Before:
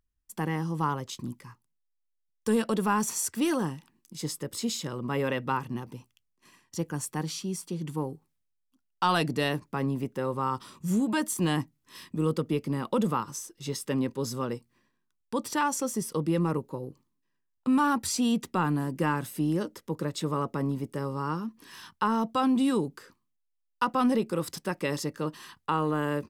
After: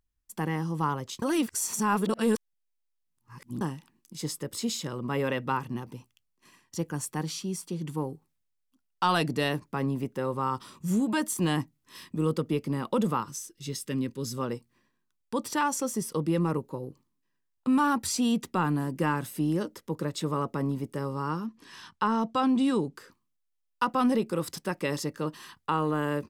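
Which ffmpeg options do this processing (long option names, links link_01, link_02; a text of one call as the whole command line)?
ffmpeg -i in.wav -filter_complex "[0:a]asettb=1/sr,asplit=3[link_01][link_02][link_03];[link_01]atrim=end=13.284[link_04];[link_02]atrim=start=13.28:end=14.38,asetpts=PTS-STARTPTS,afade=type=in:duration=0.004:curve=qsin,afade=type=out:start_time=1.096:duration=0.004:curve=qsin,equalizer=frequency=790:width_type=o:width=1.3:gain=-13[link_05];[link_03]atrim=start=14.376[link_06];[link_04][link_05]acrossfade=duration=0.004:curve1=hsin:curve2=qsin[link_07];[link_07][link_06]acrossfade=duration=0.004:curve1=qsin:curve2=hsin,asettb=1/sr,asplit=3[link_08][link_09][link_10];[link_08]atrim=end=21.464[link_11];[link_09]atrim=start=21.46:end=22.96,asetpts=PTS-STARTPTS,afade=type=in:duration=0.004:curve=qsin,afade=type=out:start_time=1.496:duration=0.004:curve=qsin,lowpass=8000[link_12];[link_10]atrim=start=22.956[link_13];[link_11][link_12]acrossfade=duration=0.004:curve1=hsin:curve2=qsin[link_14];[link_14][link_13]acrossfade=duration=0.004:curve1=qsin:curve2=hsin,asplit=3[link_15][link_16][link_17];[link_15]atrim=end=1.222[link_18];[link_16]atrim=start=1.218:end=3.612,asetpts=PTS-STARTPTS,areverse[link_19];[link_17]atrim=start=3.608[link_20];[link_18][link_19]acrossfade=duration=0.004:curve1=hsin:curve2=hsin[link_21];[link_21][link_20]acrossfade=duration=0.004:curve1=hsin:curve2=hsin" out.wav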